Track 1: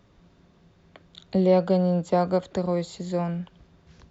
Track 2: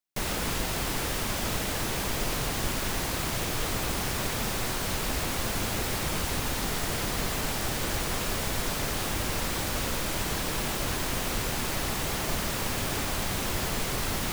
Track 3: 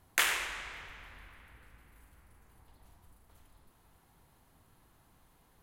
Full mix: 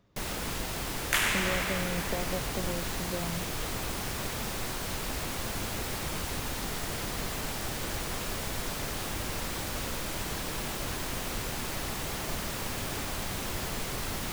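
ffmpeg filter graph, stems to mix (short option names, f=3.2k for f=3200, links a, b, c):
-filter_complex "[0:a]acompressor=threshold=-24dB:ratio=6,volume=-7.5dB[a];[1:a]volume=-4.5dB[b];[2:a]dynaudnorm=f=120:g=5:m=13.5dB,adelay=950,volume=-2dB[c];[a][b][c]amix=inputs=3:normalize=0"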